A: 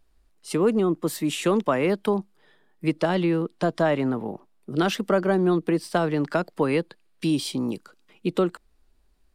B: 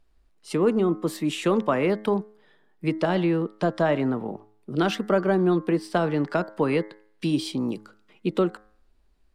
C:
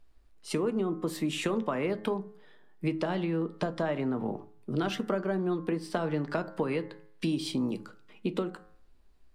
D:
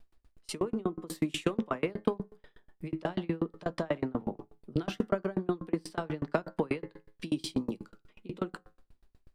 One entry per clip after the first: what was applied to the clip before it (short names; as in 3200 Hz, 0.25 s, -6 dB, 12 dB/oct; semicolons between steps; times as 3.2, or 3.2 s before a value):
high shelf 7200 Hz -9.5 dB; de-hum 106.2 Hz, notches 20
compressor, threshold -27 dBFS, peak gain reduction 11 dB; reverb RT60 0.30 s, pre-delay 4 ms, DRR 11 dB
dB-ramp tremolo decaying 8.2 Hz, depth 33 dB; gain +6 dB